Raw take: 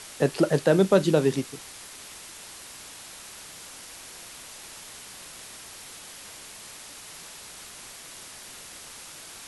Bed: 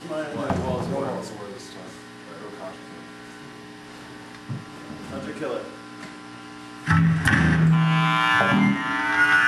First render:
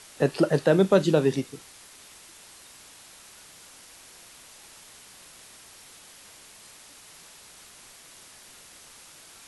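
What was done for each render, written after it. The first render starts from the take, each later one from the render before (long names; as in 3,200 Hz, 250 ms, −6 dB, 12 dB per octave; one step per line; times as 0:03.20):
noise reduction from a noise print 6 dB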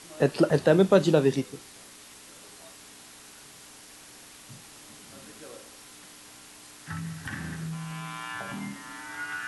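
mix in bed −17.5 dB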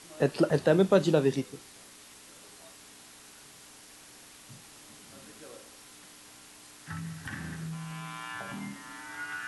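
level −3 dB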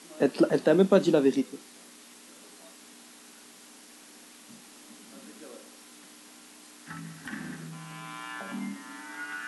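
low shelf with overshoot 160 Hz −11.5 dB, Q 3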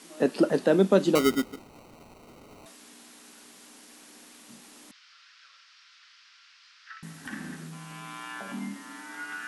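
0:01.15–0:02.66: sample-rate reduction 1,700 Hz
0:04.91–0:07.03: elliptic band-pass filter 1,300–5,200 Hz, stop band 60 dB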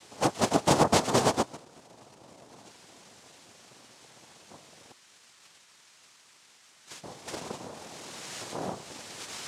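lower of the sound and its delayed copy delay 4.5 ms
cochlear-implant simulation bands 2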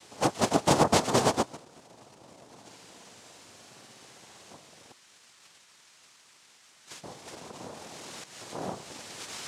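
0:02.60–0:04.54: flutter between parallel walls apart 10.2 metres, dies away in 0.83 s
0:07.12–0:07.56: downward compressor 4 to 1, threshold −41 dBFS
0:08.24–0:08.83: fade in equal-power, from −13 dB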